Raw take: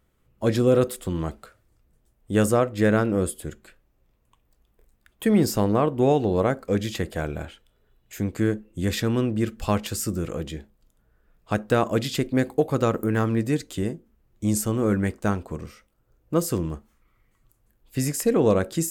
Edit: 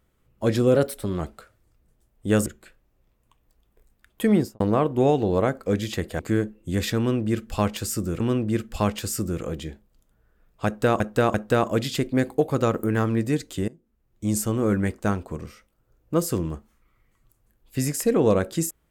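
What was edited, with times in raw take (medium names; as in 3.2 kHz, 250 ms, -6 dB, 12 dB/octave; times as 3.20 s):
0.76–1.25 s: speed 111%
2.51–3.48 s: delete
5.34–5.62 s: studio fade out
7.21–8.29 s: delete
9.08–10.30 s: loop, 2 plays
11.54–11.88 s: loop, 3 plays
13.88–14.61 s: fade in, from -19 dB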